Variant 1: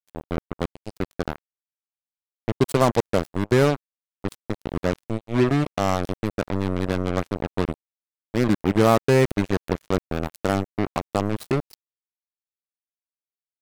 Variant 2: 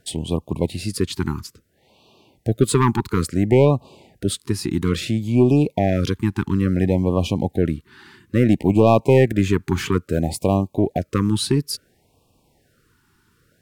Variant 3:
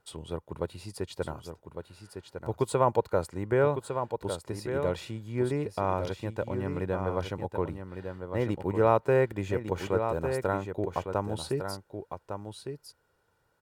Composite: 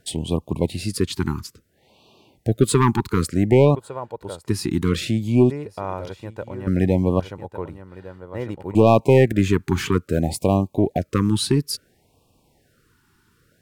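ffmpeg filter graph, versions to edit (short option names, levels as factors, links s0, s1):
-filter_complex "[2:a]asplit=3[s0][s1][s2];[1:a]asplit=4[s3][s4][s5][s6];[s3]atrim=end=3.752[s7];[s0]atrim=start=3.748:end=4.482[s8];[s4]atrim=start=4.478:end=5.502[s9];[s1]atrim=start=5.498:end=6.672[s10];[s5]atrim=start=6.668:end=7.202[s11];[s2]atrim=start=7.198:end=8.752[s12];[s6]atrim=start=8.748[s13];[s7][s8]acrossfade=d=0.004:c1=hsin:c2=hsin[s14];[s14][s9]acrossfade=d=0.004:c1=hsin:c2=hsin[s15];[s15][s10]acrossfade=d=0.004:c1=hsin:c2=hsin[s16];[s16][s11]acrossfade=d=0.004:c1=hsin:c2=hsin[s17];[s17][s12]acrossfade=d=0.004:c1=hsin:c2=hsin[s18];[s18][s13]acrossfade=d=0.004:c1=hsin:c2=hsin"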